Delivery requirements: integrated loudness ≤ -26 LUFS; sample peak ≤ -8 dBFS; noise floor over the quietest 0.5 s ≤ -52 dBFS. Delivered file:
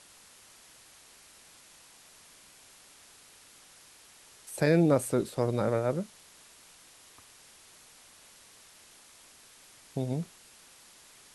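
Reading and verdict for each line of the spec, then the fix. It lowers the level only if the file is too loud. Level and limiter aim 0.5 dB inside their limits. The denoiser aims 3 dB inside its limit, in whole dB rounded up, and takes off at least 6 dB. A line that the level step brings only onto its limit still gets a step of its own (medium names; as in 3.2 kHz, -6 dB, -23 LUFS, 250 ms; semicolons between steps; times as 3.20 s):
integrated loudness -29.5 LUFS: pass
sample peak -12.0 dBFS: pass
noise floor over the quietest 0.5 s -56 dBFS: pass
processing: none needed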